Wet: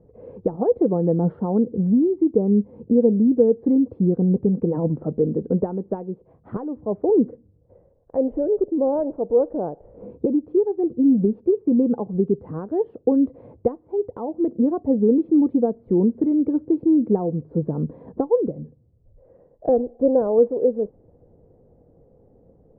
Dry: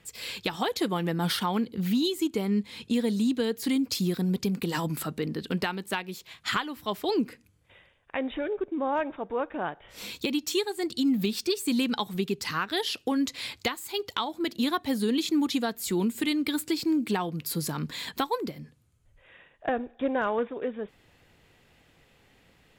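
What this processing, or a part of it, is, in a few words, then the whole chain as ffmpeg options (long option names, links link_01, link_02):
under water: -af "lowpass=frequency=630:width=0.5412,lowpass=frequency=630:width=1.3066,equalizer=frequency=490:width_type=o:width=0.37:gain=7,volume=8dB"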